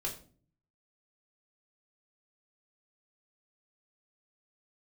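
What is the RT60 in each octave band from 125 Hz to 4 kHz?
0.90, 0.70, 0.50, 0.40, 0.35, 0.30 seconds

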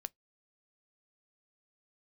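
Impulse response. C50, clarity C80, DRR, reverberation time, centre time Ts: 38.0 dB, 51.5 dB, 17.0 dB, 0.15 s, 1 ms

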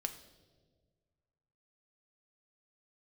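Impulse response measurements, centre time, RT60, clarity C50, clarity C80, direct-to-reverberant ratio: 11 ms, 1.6 s, 12.0 dB, 14.0 dB, 6.5 dB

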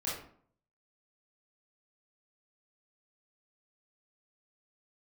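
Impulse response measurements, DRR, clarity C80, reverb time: −8.0 dB, 7.0 dB, 0.55 s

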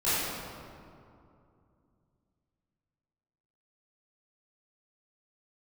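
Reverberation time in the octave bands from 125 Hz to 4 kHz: 3.6, 3.3, 2.6, 2.5, 1.8, 1.3 seconds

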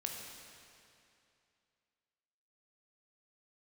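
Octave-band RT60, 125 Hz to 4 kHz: 2.6, 2.6, 2.6, 2.6, 2.5, 2.4 seconds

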